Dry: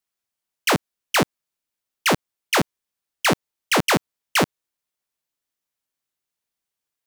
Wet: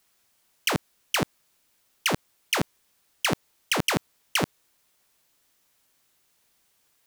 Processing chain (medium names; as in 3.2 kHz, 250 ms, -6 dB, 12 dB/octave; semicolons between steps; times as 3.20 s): compressor with a negative ratio -25 dBFS, ratio -0.5; trim +5.5 dB